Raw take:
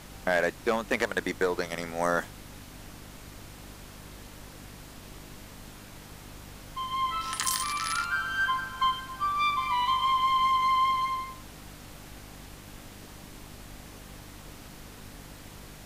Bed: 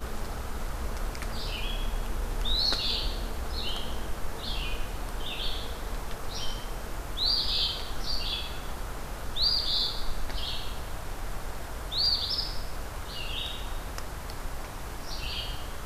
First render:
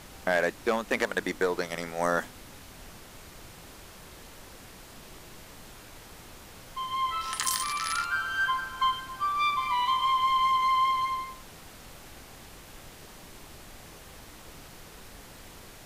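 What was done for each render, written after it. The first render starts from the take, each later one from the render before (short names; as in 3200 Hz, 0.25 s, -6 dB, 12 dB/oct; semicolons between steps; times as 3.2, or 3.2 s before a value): de-hum 50 Hz, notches 6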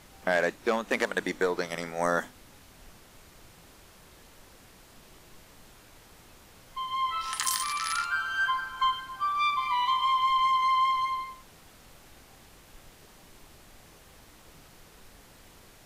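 noise print and reduce 6 dB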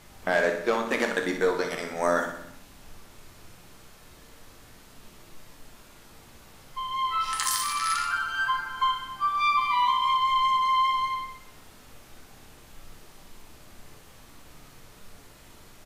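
feedback echo 61 ms, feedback 58%, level -8.5 dB; shoebox room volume 55 m³, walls mixed, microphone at 0.38 m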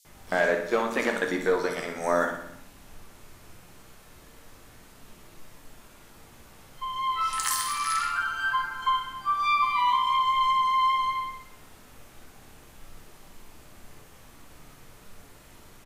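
bands offset in time highs, lows 50 ms, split 4400 Hz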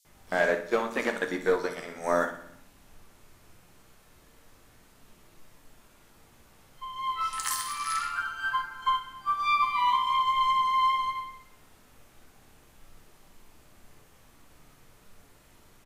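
upward expander 1.5:1, over -33 dBFS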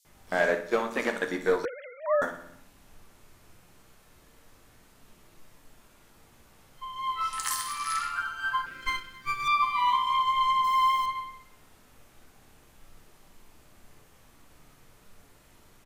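1.65–2.22 sine-wave speech; 8.66–9.48 minimum comb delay 0.6 ms; 10.64–11.06 zero-crossing step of -35.5 dBFS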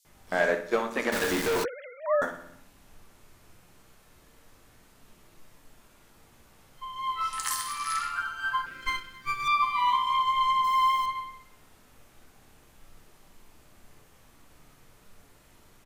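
1.12–1.64 companded quantiser 2-bit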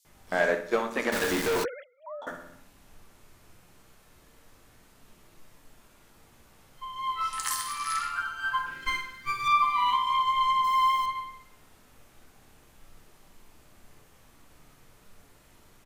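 1.83–2.27 double band-pass 1700 Hz, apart 1.9 oct; 8.49–9.94 flutter echo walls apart 8.3 m, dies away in 0.48 s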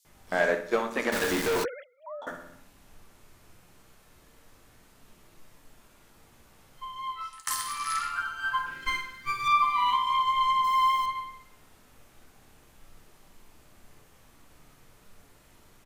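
6.84–7.47 fade out, to -23.5 dB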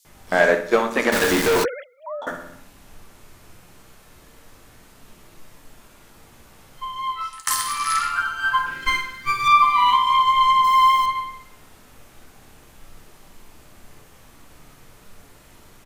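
gain +8.5 dB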